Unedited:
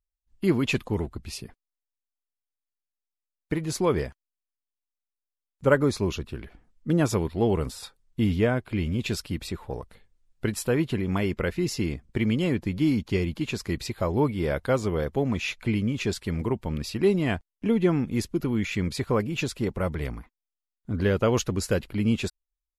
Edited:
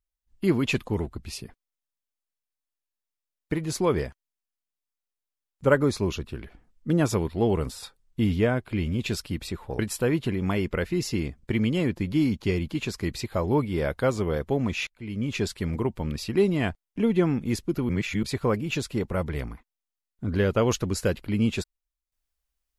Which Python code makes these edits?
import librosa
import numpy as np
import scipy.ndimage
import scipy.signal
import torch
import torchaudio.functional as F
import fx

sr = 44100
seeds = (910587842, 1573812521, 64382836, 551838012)

y = fx.edit(x, sr, fx.cut(start_s=9.79, length_s=0.66),
    fx.fade_in_from(start_s=15.53, length_s=0.4, curve='qua', floor_db=-23.5),
    fx.reverse_span(start_s=18.55, length_s=0.34), tone=tone)